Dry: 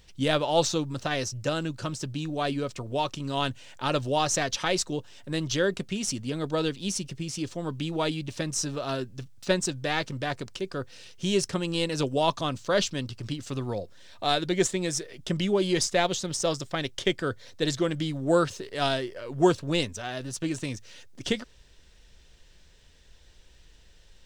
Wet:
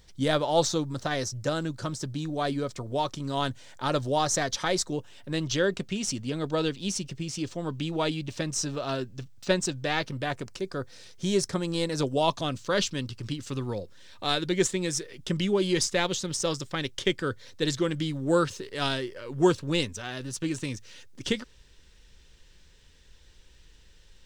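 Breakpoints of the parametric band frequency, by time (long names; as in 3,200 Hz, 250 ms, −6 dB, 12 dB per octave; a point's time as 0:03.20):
parametric band −9.5 dB 0.3 octaves
0:04.88 2,700 Hz
0:05.38 11,000 Hz
0:09.87 11,000 Hz
0:10.63 2,800 Hz
0:12.03 2,800 Hz
0:12.65 670 Hz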